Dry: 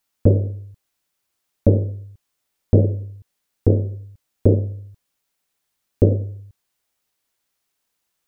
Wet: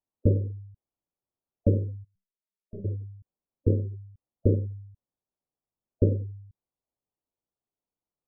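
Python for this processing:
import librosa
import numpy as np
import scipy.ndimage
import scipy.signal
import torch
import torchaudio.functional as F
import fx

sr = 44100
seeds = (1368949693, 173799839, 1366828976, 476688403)

y = scipy.signal.sosfilt(scipy.signal.bessel(8, 660.0, 'lowpass', norm='mag', fs=sr, output='sos'), x)
y = fx.spec_gate(y, sr, threshold_db=-25, keep='strong')
y = fx.stiff_resonator(y, sr, f0_hz=190.0, decay_s=0.3, stiffness=0.03, at=(2.03, 2.84), fade=0.02)
y = y * 10.0 ** (-7.0 / 20.0)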